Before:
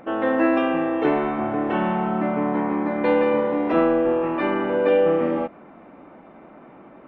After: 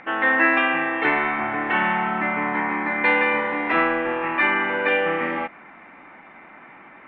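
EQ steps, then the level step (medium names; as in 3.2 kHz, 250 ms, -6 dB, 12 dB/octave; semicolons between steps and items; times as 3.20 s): distance through air 150 m; high-order bell 1.3 kHz +12.5 dB; resonant high shelf 1.7 kHz +12 dB, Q 1.5; -5.5 dB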